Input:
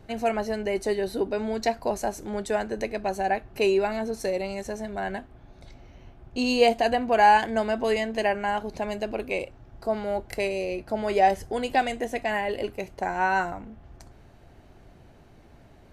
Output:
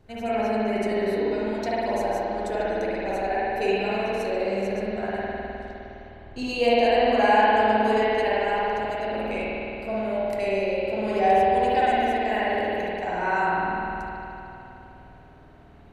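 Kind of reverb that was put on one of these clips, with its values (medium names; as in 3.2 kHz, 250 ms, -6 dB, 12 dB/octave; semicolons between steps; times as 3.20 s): spring tank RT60 3.2 s, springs 51 ms, chirp 25 ms, DRR -9 dB; trim -7 dB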